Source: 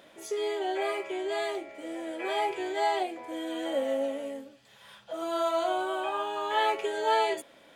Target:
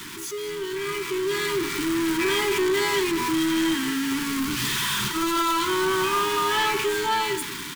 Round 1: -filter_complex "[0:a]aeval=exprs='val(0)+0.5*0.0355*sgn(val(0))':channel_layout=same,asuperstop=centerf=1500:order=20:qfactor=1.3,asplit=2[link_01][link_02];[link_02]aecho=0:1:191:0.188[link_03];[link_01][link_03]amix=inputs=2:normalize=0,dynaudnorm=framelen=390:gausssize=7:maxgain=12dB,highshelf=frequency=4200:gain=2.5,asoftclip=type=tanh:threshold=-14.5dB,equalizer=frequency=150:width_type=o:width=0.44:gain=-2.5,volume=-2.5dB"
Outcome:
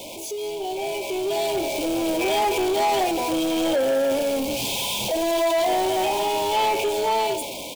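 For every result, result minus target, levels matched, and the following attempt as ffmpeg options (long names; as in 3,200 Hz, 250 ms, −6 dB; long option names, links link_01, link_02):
2,000 Hz band −6.0 dB; 125 Hz band −5.0 dB
-filter_complex "[0:a]aeval=exprs='val(0)+0.5*0.0355*sgn(val(0))':channel_layout=same,asuperstop=centerf=610:order=20:qfactor=1.3,asplit=2[link_01][link_02];[link_02]aecho=0:1:191:0.188[link_03];[link_01][link_03]amix=inputs=2:normalize=0,dynaudnorm=framelen=390:gausssize=7:maxgain=12dB,highshelf=frequency=4200:gain=2.5,asoftclip=type=tanh:threshold=-14.5dB,equalizer=frequency=150:width_type=o:width=0.44:gain=-2.5,volume=-2.5dB"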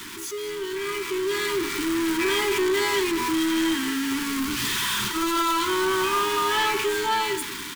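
125 Hz band −4.5 dB
-filter_complex "[0:a]aeval=exprs='val(0)+0.5*0.0355*sgn(val(0))':channel_layout=same,asuperstop=centerf=610:order=20:qfactor=1.3,asplit=2[link_01][link_02];[link_02]aecho=0:1:191:0.188[link_03];[link_01][link_03]amix=inputs=2:normalize=0,dynaudnorm=framelen=390:gausssize=7:maxgain=12dB,highshelf=frequency=4200:gain=2.5,asoftclip=type=tanh:threshold=-14.5dB,equalizer=frequency=150:width_type=o:width=0.44:gain=7,volume=-2.5dB"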